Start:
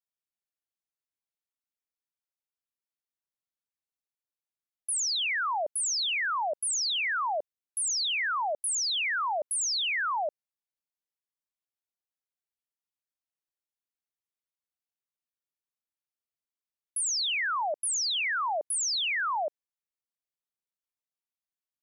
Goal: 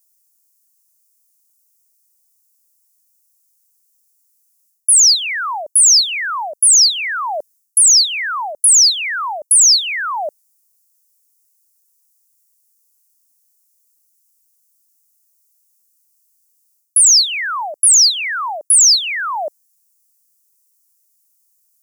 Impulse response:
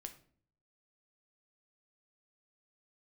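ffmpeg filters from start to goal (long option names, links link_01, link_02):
-af "aexciter=amount=10.6:drive=7.5:freq=5100,areverse,acompressor=threshold=-16dB:ratio=16,areverse,volume=8dB"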